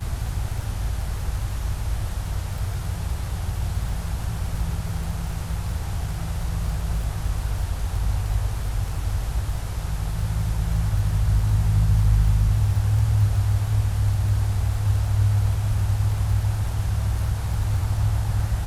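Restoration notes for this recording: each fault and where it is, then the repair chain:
crackle 21 per s -30 dBFS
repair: de-click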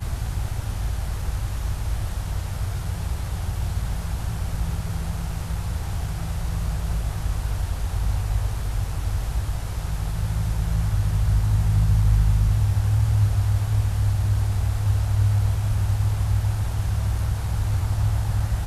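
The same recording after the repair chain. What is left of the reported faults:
nothing left

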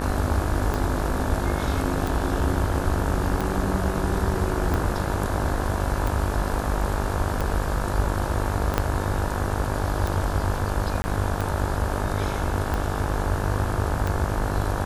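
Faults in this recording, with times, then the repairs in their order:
buzz 50 Hz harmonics 35 -29 dBFS
tick 45 rpm
8.78 s: pop -7 dBFS
11.02–11.04 s: dropout 20 ms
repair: de-click; de-hum 50 Hz, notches 35; interpolate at 11.02 s, 20 ms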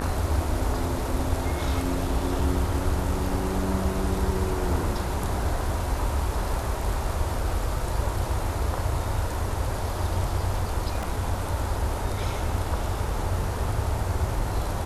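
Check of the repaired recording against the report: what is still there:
8.78 s: pop

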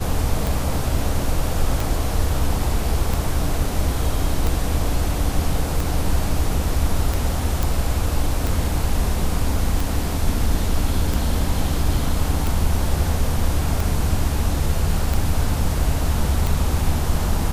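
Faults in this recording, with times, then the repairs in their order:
tick 45 rpm
7.63 s: pop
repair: de-click

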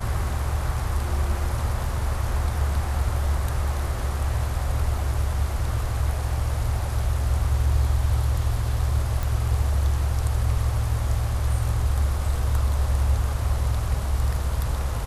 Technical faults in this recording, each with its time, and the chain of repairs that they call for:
9.23 s: pop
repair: de-click

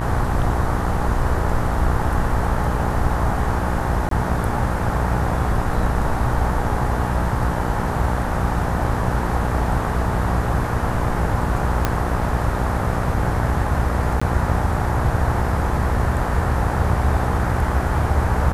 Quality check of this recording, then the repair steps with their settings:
buzz 60 Hz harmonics 32 -24 dBFS
4.09–4.11 s: dropout 23 ms
11.85 s: pop -4 dBFS
14.20–14.21 s: dropout 15 ms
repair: de-click; de-hum 60 Hz, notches 32; interpolate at 4.09 s, 23 ms; interpolate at 14.20 s, 15 ms

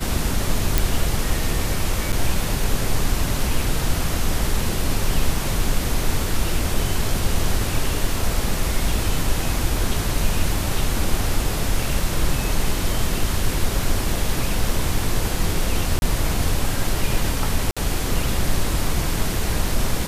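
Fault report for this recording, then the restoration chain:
0.78 s: pop
2.12–2.13 s: dropout 7.2 ms
15.99–16.02 s: dropout 31 ms
17.71–17.77 s: dropout 56 ms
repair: de-click; interpolate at 2.12 s, 7.2 ms; interpolate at 15.99 s, 31 ms; interpolate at 17.71 s, 56 ms

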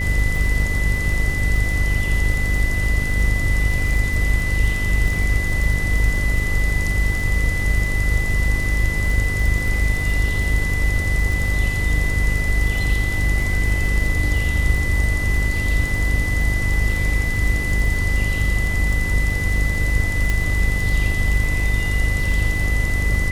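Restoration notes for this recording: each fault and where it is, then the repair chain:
buzz 50 Hz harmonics 12 -23 dBFS
crackle 39 per s -25 dBFS
whine 2 kHz -24 dBFS
20.30 s: pop -8 dBFS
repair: de-click; band-stop 2 kHz, Q 30; de-hum 50 Hz, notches 12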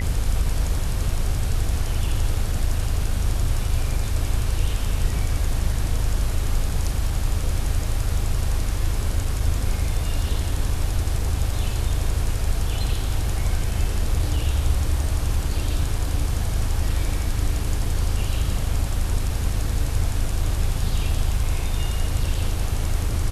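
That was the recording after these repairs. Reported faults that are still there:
nothing left

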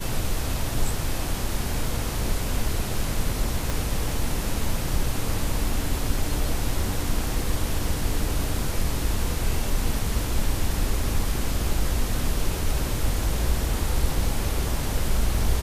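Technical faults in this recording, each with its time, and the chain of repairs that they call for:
3.70 s: pop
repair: de-click

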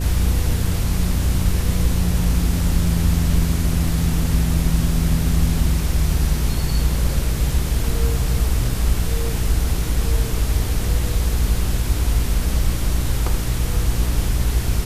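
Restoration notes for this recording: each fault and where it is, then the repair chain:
hum 60 Hz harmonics 7 -23 dBFS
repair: de-hum 60 Hz, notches 7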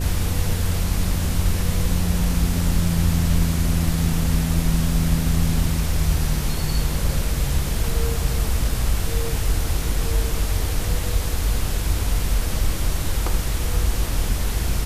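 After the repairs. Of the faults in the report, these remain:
nothing left

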